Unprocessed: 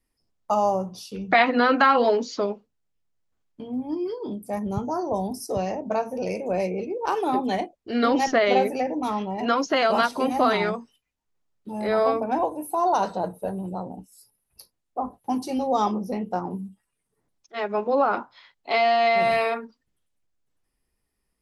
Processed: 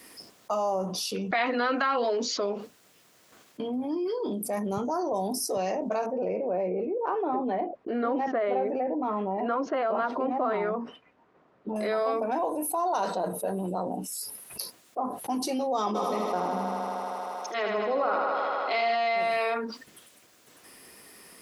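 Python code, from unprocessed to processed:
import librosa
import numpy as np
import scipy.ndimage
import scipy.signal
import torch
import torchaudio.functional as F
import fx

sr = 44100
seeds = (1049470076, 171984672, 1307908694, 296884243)

y = fx.lowpass(x, sr, hz=1200.0, slope=12, at=(6.06, 11.76))
y = fx.echo_thinned(y, sr, ms=78, feedback_pct=82, hz=160.0, wet_db=-5, at=(15.94, 18.94), fade=0.02)
y = scipy.signal.sosfilt(scipy.signal.bessel(2, 320.0, 'highpass', norm='mag', fs=sr, output='sos'), y)
y = fx.notch(y, sr, hz=850.0, q=12.0)
y = fx.env_flatten(y, sr, amount_pct=70)
y = F.gain(torch.from_numpy(y), -9.0).numpy()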